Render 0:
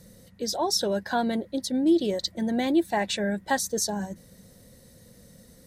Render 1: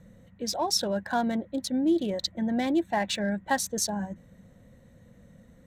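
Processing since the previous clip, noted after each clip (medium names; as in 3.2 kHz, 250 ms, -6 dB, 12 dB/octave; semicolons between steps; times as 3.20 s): local Wiener filter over 9 samples; peaking EQ 410 Hz -7 dB 0.54 oct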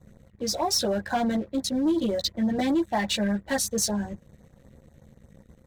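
chorus voices 6, 0.9 Hz, delay 14 ms, depth 1.4 ms; waveshaping leveller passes 2; LFO notch sine 8.2 Hz 760–3000 Hz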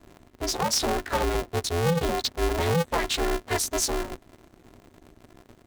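polarity switched at an audio rate 170 Hz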